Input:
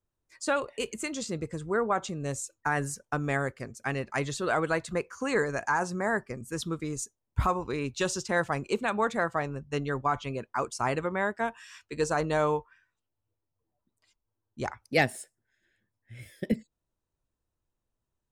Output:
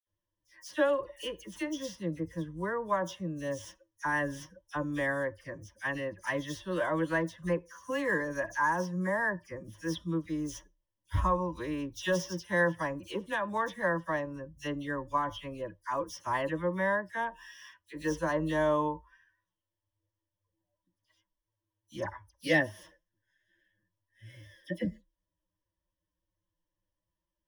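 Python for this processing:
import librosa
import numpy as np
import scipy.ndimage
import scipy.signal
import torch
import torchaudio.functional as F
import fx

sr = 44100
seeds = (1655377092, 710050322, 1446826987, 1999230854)

y = scipy.signal.medfilt(x, 5)
y = fx.ripple_eq(y, sr, per_octave=1.2, db=14)
y = fx.stretch_vocoder(y, sr, factor=1.5)
y = fx.dispersion(y, sr, late='lows', ms=68.0, hz=2700.0)
y = F.gain(torch.from_numpy(y), -4.5).numpy()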